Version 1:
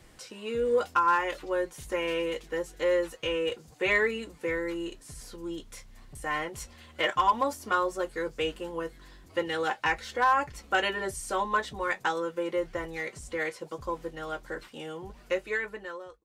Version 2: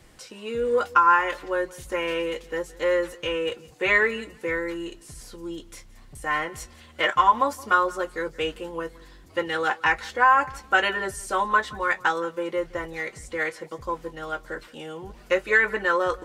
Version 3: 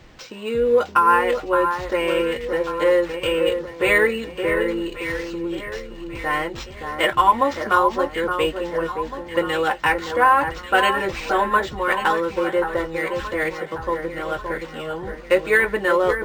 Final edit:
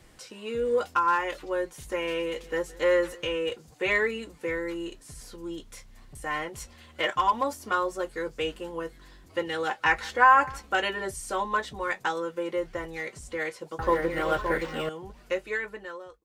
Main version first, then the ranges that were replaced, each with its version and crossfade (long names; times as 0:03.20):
1
0:02.37–0:03.25: punch in from 2
0:09.86–0:10.62: punch in from 2, crossfade 0.16 s
0:13.79–0:14.89: punch in from 3